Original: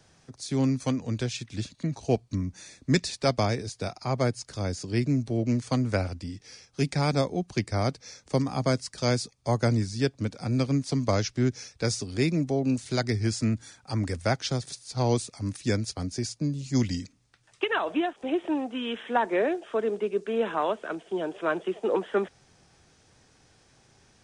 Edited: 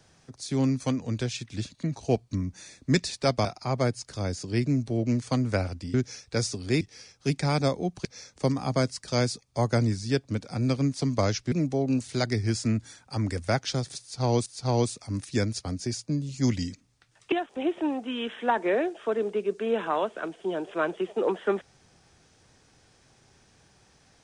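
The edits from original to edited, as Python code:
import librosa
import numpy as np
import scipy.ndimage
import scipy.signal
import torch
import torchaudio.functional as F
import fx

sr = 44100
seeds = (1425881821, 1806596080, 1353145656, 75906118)

y = fx.edit(x, sr, fx.cut(start_s=3.45, length_s=0.4),
    fx.cut(start_s=7.58, length_s=0.37),
    fx.move(start_s=11.42, length_s=0.87, to_s=6.34),
    fx.repeat(start_s=14.78, length_s=0.45, count=2),
    fx.cut(start_s=17.64, length_s=0.35), tone=tone)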